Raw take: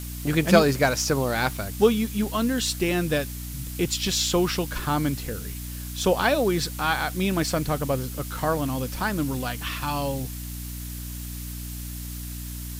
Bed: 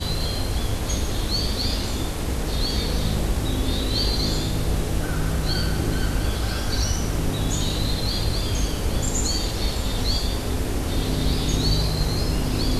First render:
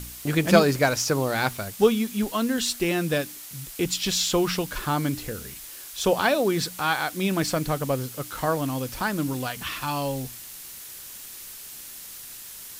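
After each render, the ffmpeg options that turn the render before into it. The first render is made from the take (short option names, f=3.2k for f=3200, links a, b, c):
-af "bandreject=f=60:t=h:w=4,bandreject=f=120:t=h:w=4,bandreject=f=180:t=h:w=4,bandreject=f=240:t=h:w=4,bandreject=f=300:t=h:w=4"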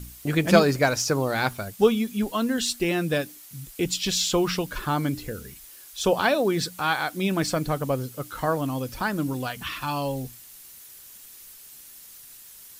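-af "afftdn=nr=8:nf=-41"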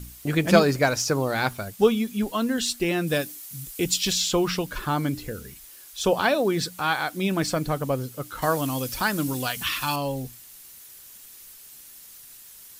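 -filter_complex "[0:a]asettb=1/sr,asplit=3[a][b][c];[a]atrim=end=3.074[d];[b]atrim=start=3.07:end=4.13,asetpts=PTS-STARTPTS,afade=t=in:d=0.004:c=qsin,afade=t=out:st=1.056:d=0.004:c=qsin,highshelf=f=4.9k:g=7[e];[c]atrim=start=4.126[f];[d][e]acrossfade=d=0.004:c1=hsin:c2=qsin[g];[g][f]acrossfade=d=0.004:c1=qsin:c2=hsin,asettb=1/sr,asplit=3[h][i][j];[h]atrim=end=8.424[k];[i]atrim=start=8.42:end=9.96,asetpts=PTS-STARTPTS,afade=t=in:d=0.004:c=qsin,afade=t=out:st=1.536:d=0.004:c=qsin,highshelf=f=2.2k:g=10[l];[j]atrim=start=9.956[m];[k][l]acrossfade=d=0.004:c1=hsin:c2=qsin[n];[n][m]acrossfade=d=0.004:c1=qsin:c2=hsin"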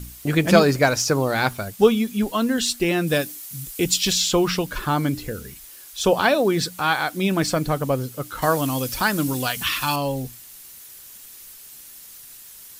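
-af "volume=3.5dB,alimiter=limit=-2dB:level=0:latency=1"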